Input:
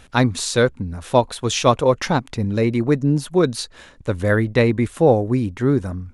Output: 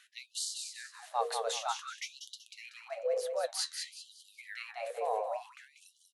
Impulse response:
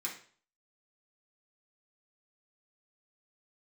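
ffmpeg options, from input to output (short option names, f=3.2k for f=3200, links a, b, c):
-af "equalizer=f=270:t=o:w=0.3:g=8.5,bandreject=f=50:t=h:w=6,bandreject=f=100:t=h:w=6,bandreject=f=150:t=h:w=6,bandreject=f=200:t=h:w=6,bandreject=f=250:t=h:w=6,areverse,acompressor=threshold=-25dB:ratio=12,areverse,afreqshift=220,flanger=delay=7.1:depth=7.5:regen=65:speed=0.92:shape=triangular,aecho=1:1:189|378|567|756:0.531|0.181|0.0614|0.0209,afftfilt=real='re*gte(b*sr/1024,390*pow(2900/390,0.5+0.5*sin(2*PI*0.54*pts/sr)))':imag='im*gte(b*sr/1024,390*pow(2900/390,0.5+0.5*sin(2*PI*0.54*pts/sr)))':win_size=1024:overlap=0.75"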